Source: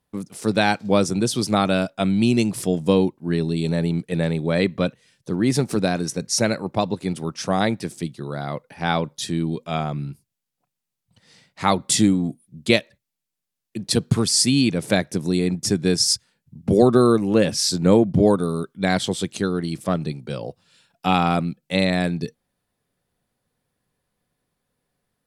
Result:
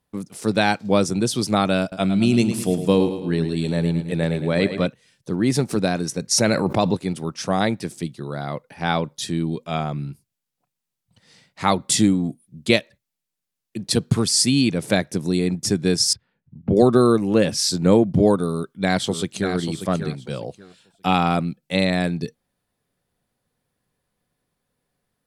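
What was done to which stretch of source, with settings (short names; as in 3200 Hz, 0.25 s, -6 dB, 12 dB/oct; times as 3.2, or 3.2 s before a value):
1.81–4.87 feedback echo 0.108 s, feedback 50%, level -10 dB
6.31–6.97 fast leveller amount 70%
16.13–16.77 air absorption 460 m
18.49–19.54 echo throw 0.59 s, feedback 20%, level -8.5 dB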